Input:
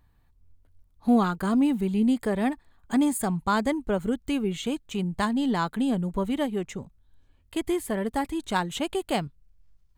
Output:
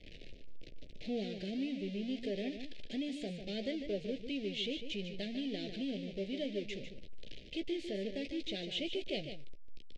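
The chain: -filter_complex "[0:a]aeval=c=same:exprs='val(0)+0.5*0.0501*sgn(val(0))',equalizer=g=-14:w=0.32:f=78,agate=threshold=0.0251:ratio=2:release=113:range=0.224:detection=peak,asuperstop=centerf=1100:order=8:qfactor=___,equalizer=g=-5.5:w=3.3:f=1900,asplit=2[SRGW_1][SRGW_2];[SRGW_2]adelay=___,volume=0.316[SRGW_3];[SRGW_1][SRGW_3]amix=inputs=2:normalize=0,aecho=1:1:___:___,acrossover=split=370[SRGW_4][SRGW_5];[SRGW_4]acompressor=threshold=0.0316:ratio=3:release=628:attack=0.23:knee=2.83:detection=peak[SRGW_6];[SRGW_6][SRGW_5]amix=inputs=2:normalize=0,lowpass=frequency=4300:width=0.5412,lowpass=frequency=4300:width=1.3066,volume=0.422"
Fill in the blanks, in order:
0.75, 15, 149, 0.355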